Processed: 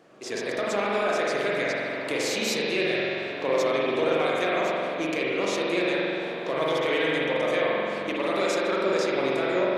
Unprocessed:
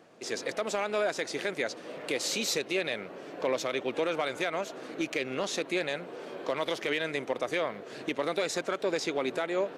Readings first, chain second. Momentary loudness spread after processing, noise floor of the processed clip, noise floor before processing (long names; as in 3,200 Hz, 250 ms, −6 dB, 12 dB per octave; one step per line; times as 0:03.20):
5 LU, −33 dBFS, −46 dBFS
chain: spring reverb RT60 2.8 s, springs 44 ms, chirp 35 ms, DRR −5.5 dB